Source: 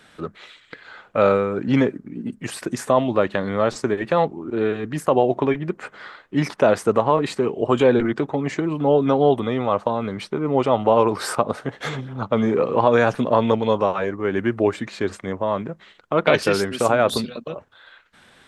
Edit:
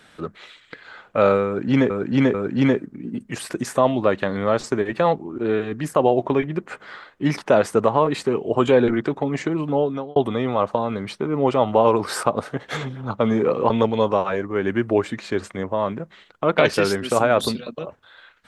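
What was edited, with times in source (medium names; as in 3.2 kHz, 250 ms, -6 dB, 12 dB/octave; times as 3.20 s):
1.46–1.90 s: loop, 3 plays
8.75–9.28 s: fade out
12.82–13.39 s: delete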